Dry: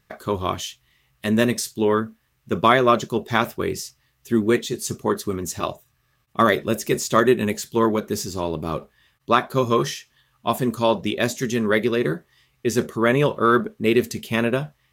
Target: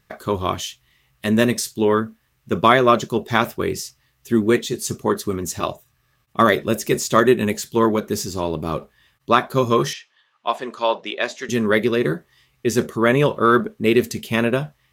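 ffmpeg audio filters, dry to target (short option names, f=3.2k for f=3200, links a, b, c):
-filter_complex "[0:a]asettb=1/sr,asplit=3[a][b][c];[a]atrim=end=9.934[d];[b]atrim=start=9.93:end=11.49,asetpts=PTS-STARTPTS,afade=t=in:d=0.004:c=qsin,afade=t=out:st=1.556:d=0.004:c=qsin,highpass=550,lowpass=4.2k[e];[c]atrim=start=11.486[f];[d][e]acrossfade=d=0.004:c1=hsin:c2=qsin[g];[g][f]acrossfade=d=0.004:c1=qsin:c2=hsin,volume=2dB"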